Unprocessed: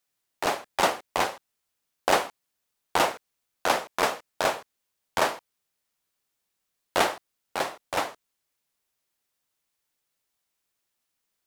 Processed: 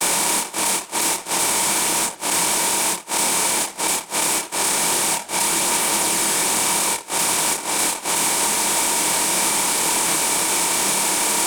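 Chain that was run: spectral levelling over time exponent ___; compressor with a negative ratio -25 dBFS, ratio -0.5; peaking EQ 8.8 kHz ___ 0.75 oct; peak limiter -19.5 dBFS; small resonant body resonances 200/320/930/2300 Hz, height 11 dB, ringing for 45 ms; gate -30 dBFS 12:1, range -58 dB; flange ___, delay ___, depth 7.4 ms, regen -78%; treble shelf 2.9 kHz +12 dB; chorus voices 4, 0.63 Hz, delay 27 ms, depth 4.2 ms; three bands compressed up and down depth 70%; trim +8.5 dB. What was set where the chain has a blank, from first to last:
0.2, +12.5 dB, 2 Hz, 7.6 ms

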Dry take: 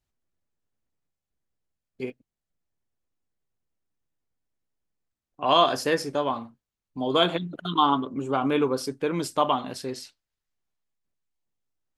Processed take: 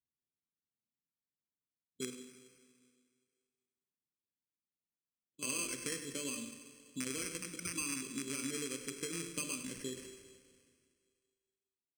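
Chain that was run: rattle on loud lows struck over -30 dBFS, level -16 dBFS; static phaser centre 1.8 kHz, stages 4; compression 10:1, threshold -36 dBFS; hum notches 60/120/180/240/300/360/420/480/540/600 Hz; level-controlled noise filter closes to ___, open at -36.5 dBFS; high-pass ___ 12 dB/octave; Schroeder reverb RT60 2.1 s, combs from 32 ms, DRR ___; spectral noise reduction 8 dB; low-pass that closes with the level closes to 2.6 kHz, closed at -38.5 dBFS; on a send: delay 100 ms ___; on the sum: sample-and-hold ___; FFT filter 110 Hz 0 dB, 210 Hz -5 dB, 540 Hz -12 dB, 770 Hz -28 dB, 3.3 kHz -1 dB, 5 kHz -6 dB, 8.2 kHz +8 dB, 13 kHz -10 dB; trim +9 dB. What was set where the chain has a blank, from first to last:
590 Hz, 290 Hz, 8 dB, -12.5 dB, 12×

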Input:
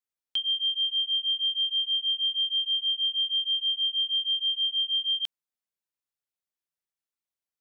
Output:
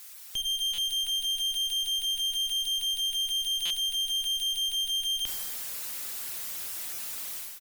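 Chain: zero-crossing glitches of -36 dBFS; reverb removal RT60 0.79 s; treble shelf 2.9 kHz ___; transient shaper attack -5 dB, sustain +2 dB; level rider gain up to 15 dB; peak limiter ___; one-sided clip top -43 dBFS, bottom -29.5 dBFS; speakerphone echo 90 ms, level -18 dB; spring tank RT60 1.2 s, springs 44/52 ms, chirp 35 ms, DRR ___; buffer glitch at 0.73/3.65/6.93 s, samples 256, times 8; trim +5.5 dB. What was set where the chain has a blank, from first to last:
-10 dB, -26 dBFS, 7.5 dB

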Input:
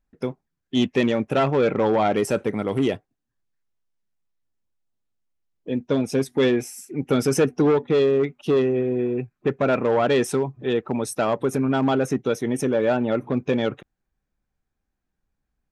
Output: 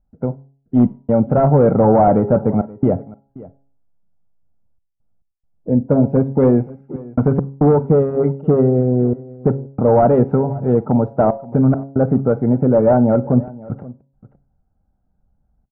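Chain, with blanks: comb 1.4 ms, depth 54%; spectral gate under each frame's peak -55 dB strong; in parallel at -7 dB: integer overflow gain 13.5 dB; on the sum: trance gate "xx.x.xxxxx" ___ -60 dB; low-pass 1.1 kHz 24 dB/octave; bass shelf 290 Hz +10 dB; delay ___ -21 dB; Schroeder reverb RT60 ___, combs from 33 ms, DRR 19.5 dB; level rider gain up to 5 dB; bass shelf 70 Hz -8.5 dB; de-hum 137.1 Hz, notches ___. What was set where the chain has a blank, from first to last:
69 bpm, 529 ms, 0.31 s, 7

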